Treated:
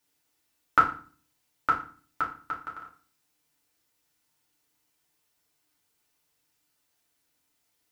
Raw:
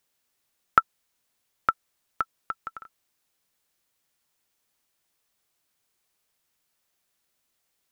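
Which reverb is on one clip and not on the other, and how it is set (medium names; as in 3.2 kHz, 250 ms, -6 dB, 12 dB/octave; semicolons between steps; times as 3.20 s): FDN reverb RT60 0.41 s, low-frequency decay 1.5×, high-frequency decay 0.9×, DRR -5 dB; trim -5 dB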